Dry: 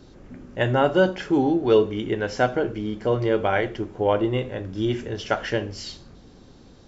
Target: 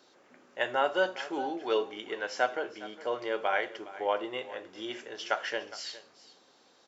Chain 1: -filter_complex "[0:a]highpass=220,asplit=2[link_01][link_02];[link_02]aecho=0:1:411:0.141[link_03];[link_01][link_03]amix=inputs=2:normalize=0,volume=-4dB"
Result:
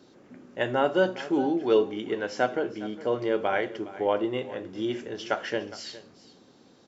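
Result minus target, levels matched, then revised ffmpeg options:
250 Hz band +7.0 dB
-filter_complex "[0:a]highpass=650,asplit=2[link_01][link_02];[link_02]aecho=0:1:411:0.141[link_03];[link_01][link_03]amix=inputs=2:normalize=0,volume=-4dB"

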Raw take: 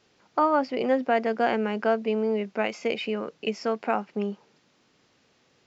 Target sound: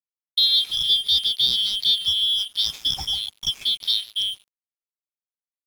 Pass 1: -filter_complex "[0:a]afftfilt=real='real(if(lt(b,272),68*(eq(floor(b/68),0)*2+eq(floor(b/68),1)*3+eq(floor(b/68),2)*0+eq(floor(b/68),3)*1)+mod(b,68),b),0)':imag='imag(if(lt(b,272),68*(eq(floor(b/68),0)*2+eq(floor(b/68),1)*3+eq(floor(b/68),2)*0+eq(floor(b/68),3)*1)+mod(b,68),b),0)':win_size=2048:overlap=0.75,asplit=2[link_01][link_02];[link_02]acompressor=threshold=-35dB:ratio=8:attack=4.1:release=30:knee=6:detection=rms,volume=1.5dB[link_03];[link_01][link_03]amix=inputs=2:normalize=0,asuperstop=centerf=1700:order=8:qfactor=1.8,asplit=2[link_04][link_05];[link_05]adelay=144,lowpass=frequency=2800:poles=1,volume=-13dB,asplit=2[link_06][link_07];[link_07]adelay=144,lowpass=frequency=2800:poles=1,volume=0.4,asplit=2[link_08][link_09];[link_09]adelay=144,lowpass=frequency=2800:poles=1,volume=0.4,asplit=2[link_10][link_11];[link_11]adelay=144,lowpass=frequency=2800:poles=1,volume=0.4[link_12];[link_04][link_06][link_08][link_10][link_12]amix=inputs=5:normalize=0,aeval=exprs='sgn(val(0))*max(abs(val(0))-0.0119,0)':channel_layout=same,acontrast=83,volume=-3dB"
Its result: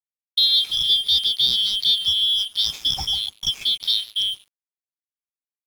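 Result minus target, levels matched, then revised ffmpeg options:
downward compressor: peak gain reduction −9 dB
-filter_complex "[0:a]afftfilt=real='real(if(lt(b,272),68*(eq(floor(b/68),0)*2+eq(floor(b/68),1)*3+eq(floor(b/68),2)*0+eq(floor(b/68),3)*1)+mod(b,68),b),0)':imag='imag(if(lt(b,272),68*(eq(floor(b/68),0)*2+eq(floor(b/68),1)*3+eq(floor(b/68),2)*0+eq(floor(b/68),3)*1)+mod(b,68),b),0)':win_size=2048:overlap=0.75,asplit=2[link_01][link_02];[link_02]acompressor=threshold=-45dB:ratio=8:attack=4.1:release=30:knee=6:detection=rms,volume=1.5dB[link_03];[link_01][link_03]amix=inputs=2:normalize=0,asuperstop=centerf=1700:order=8:qfactor=1.8,asplit=2[link_04][link_05];[link_05]adelay=144,lowpass=frequency=2800:poles=1,volume=-13dB,asplit=2[link_06][link_07];[link_07]adelay=144,lowpass=frequency=2800:poles=1,volume=0.4,asplit=2[link_08][link_09];[link_09]adelay=144,lowpass=frequency=2800:poles=1,volume=0.4,asplit=2[link_10][link_11];[link_11]adelay=144,lowpass=frequency=2800:poles=1,volume=0.4[link_12];[link_04][link_06][link_08][link_10][link_12]amix=inputs=5:normalize=0,aeval=exprs='sgn(val(0))*max(abs(val(0))-0.0119,0)':channel_layout=same,acontrast=83,volume=-3dB"

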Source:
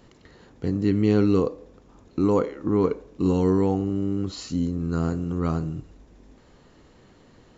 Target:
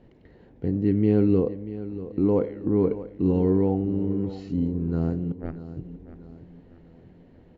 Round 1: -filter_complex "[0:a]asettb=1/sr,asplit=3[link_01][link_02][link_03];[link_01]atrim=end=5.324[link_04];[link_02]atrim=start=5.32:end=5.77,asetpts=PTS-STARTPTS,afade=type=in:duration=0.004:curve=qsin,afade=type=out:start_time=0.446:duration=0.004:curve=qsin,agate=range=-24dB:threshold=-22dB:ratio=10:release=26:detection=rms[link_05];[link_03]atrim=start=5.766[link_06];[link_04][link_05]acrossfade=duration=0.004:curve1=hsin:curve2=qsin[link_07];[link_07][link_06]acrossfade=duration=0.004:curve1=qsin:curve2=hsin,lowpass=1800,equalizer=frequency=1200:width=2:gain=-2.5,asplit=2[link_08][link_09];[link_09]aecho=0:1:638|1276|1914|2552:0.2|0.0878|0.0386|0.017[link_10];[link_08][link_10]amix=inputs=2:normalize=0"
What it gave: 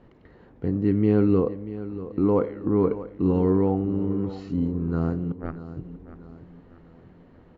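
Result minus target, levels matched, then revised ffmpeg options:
1,000 Hz band +5.0 dB
-filter_complex "[0:a]asettb=1/sr,asplit=3[link_01][link_02][link_03];[link_01]atrim=end=5.324[link_04];[link_02]atrim=start=5.32:end=5.77,asetpts=PTS-STARTPTS,afade=type=in:duration=0.004:curve=qsin,afade=type=out:start_time=0.446:duration=0.004:curve=qsin,agate=range=-24dB:threshold=-22dB:ratio=10:release=26:detection=rms[link_05];[link_03]atrim=start=5.766[link_06];[link_04][link_05]acrossfade=duration=0.004:curve1=hsin:curve2=qsin[link_07];[link_07][link_06]acrossfade=duration=0.004:curve1=qsin:curve2=hsin,lowpass=1800,equalizer=frequency=1200:width=2:gain=-13.5,asplit=2[link_08][link_09];[link_09]aecho=0:1:638|1276|1914|2552:0.2|0.0878|0.0386|0.017[link_10];[link_08][link_10]amix=inputs=2:normalize=0"

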